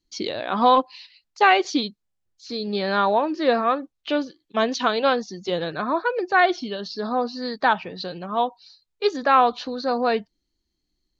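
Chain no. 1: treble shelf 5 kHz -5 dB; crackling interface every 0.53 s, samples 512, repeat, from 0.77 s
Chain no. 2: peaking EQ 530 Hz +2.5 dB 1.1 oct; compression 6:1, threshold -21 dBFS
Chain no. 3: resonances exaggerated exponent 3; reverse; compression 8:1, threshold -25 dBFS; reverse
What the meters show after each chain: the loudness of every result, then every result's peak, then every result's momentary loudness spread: -23.0 LUFS, -27.0 LUFS, -30.5 LUFS; -5.0 dBFS, -11.5 dBFS, -16.0 dBFS; 11 LU, 7 LU, 5 LU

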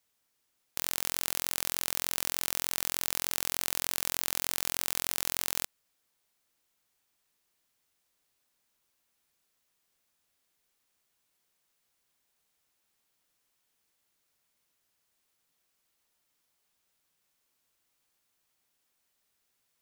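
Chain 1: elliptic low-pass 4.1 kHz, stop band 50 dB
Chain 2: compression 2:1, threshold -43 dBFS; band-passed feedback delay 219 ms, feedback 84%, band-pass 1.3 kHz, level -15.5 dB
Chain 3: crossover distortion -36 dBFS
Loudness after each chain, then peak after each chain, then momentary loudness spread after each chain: -39.5 LUFS, -41.5 LUFS, -31.0 LUFS; -18.0 dBFS, -11.5 dBFS, -3.5 dBFS; 2 LU, 2 LU, 2 LU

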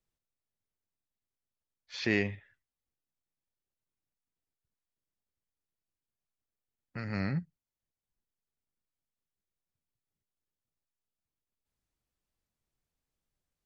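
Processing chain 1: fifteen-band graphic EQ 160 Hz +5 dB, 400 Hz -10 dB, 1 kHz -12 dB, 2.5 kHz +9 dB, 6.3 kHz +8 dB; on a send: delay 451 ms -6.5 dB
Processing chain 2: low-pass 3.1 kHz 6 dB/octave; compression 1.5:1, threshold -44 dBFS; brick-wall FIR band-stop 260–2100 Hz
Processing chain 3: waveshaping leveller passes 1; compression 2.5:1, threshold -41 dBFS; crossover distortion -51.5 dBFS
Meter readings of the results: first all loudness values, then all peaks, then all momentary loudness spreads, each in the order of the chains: -32.5 LUFS, -43.0 LUFS, -43.0 LUFS; -11.0 dBFS, -27.5 dBFS, -25.5 dBFS; 15 LU, 14 LU, 9 LU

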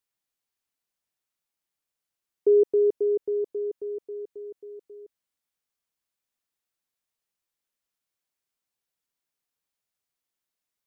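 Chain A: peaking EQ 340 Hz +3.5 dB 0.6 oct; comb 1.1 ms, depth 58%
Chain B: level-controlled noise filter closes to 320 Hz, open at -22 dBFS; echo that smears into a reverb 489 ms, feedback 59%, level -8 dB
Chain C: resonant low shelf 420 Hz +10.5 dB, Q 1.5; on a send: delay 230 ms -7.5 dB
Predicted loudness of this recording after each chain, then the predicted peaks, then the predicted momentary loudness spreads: -29.5 LUFS, -26.0 LUFS, -18.5 LUFS; -17.0 dBFS, -13.5 dBFS, -7.0 dBFS; 22 LU, 21 LU, 21 LU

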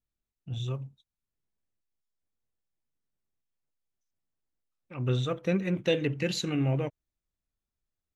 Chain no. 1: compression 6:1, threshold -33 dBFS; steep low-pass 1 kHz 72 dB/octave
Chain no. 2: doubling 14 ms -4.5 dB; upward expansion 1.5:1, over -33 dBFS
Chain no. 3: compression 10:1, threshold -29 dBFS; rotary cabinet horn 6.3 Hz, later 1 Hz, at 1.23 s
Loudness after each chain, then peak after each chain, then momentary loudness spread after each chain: -38.5 LUFS, -31.0 LUFS, -37.0 LUFS; -23.5 dBFS, -12.0 dBFS, -21.0 dBFS; 8 LU, 16 LU, 8 LU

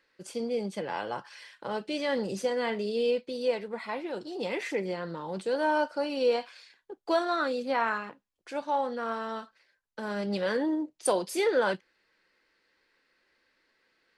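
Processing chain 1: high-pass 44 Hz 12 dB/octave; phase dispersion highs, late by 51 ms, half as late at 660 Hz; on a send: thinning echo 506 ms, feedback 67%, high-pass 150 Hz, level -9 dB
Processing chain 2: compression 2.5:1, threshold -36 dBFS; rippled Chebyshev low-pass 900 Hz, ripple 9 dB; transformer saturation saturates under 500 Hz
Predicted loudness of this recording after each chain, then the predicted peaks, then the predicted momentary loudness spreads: -30.5 LUFS, -44.5 LUFS; -10.5 dBFS, -29.5 dBFS; 12 LU, 9 LU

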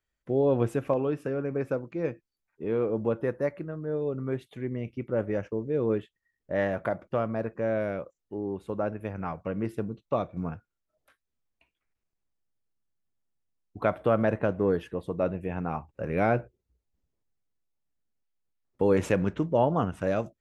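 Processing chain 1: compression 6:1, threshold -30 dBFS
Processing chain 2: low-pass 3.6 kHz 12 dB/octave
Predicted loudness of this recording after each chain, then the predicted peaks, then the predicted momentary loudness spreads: -36.0 LUFS, -29.5 LUFS; -16.5 dBFS, -10.5 dBFS; 4 LU, 10 LU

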